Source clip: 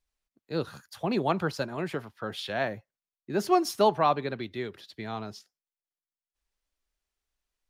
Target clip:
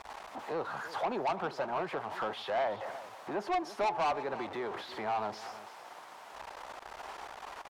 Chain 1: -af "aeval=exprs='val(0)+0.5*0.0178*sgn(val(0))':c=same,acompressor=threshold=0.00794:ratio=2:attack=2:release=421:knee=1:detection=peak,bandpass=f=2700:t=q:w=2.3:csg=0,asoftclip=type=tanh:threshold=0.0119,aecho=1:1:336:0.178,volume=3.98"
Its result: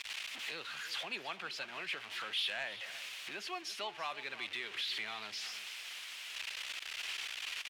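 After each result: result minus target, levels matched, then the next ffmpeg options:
1 kHz band -9.5 dB; compression: peak gain reduction +4.5 dB
-af "aeval=exprs='val(0)+0.5*0.0178*sgn(val(0))':c=same,acompressor=threshold=0.00794:ratio=2:attack=2:release=421:knee=1:detection=peak,bandpass=f=850:t=q:w=2.3:csg=0,asoftclip=type=tanh:threshold=0.0119,aecho=1:1:336:0.178,volume=3.98"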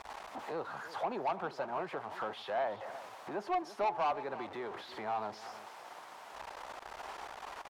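compression: peak gain reduction +4.5 dB
-af "aeval=exprs='val(0)+0.5*0.0178*sgn(val(0))':c=same,acompressor=threshold=0.0224:ratio=2:attack=2:release=421:knee=1:detection=peak,bandpass=f=850:t=q:w=2.3:csg=0,asoftclip=type=tanh:threshold=0.0119,aecho=1:1:336:0.178,volume=3.98"

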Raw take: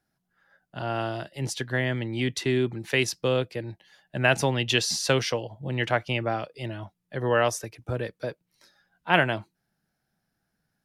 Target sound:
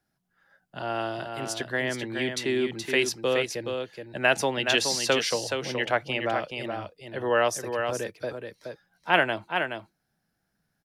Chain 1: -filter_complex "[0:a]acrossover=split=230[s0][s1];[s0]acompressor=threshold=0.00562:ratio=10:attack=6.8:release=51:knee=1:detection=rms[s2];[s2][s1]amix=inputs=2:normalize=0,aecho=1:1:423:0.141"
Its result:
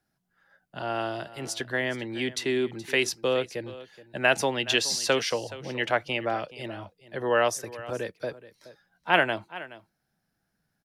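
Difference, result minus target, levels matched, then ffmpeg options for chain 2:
echo-to-direct -10 dB
-filter_complex "[0:a]acrossover=split=230[s0][s1];[s0]acompressor=threshold=0.00562:ratio=10:attack=6.8:release=51:knee=1:detection=rms[s2];[s2][s1]amix=inputs=2:normalize=0,aecho=1:1:423:0.501"

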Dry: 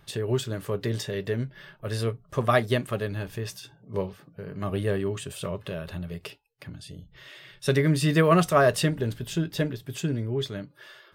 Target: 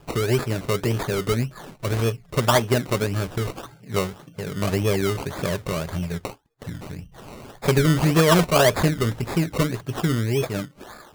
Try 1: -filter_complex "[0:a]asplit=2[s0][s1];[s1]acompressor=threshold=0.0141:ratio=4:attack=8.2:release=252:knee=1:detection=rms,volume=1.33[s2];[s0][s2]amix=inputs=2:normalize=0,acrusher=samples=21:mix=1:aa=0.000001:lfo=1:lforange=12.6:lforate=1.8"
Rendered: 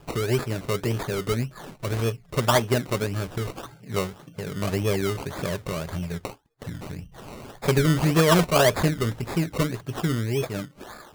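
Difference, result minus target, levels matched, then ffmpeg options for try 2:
compression: peak gain reduction +8 dB
-filter_complex "[0:a]asplit=2[s0][s1];[s1]acompressor=threshold=0.0473:ratio=4:attack=8.2:release=252:knee=1:detection=rms,volume=1.33[s2];[s0][s2]amix=inputs=2:normalize=0,acrusher=samples=21:mix=1:aa=0.000001:lfo=1:lforange=12.6:lforate=1.8"

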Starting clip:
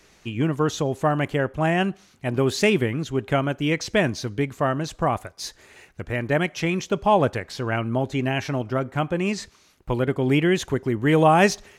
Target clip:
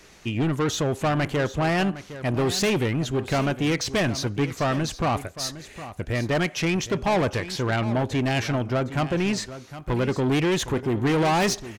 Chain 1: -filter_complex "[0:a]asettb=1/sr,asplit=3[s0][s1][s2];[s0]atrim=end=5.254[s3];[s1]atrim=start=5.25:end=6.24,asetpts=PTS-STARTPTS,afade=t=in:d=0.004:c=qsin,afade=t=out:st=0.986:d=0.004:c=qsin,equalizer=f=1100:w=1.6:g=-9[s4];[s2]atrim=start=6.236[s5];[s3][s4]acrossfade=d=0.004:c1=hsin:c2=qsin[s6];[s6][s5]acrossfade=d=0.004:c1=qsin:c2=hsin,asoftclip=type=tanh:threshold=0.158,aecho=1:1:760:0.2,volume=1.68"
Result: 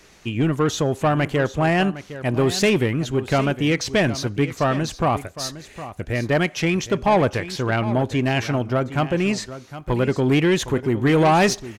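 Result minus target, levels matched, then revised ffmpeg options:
saturation: distortion -6 dB
-filter_complex "[0:a]asettb=1/sr,asplit=3[s0][s1][s2];[s0]atrim=end=5.254[s3];[s1]atrim=start=5.25:end=6.24,asetpts=PTS-STARTPTS,afade=t=in:d=0.004:c=qsin,afade=t=out:st=0.986:d=0.004:c=qsin,equalizer=f=1100:w=1.6:g=-9[s4];[s2]atrim=start=6.236[s5];[s3][s4]acrossfade=d=0.004:c1=hsin:c2=qsin[s6];[s6][s5]acrossfade=d=0.004:c1=qsin:c2=hsin,asoftclip=type=tanh:threshold=0.0668,aecho=1:1:760:0.2,volume=1.68"

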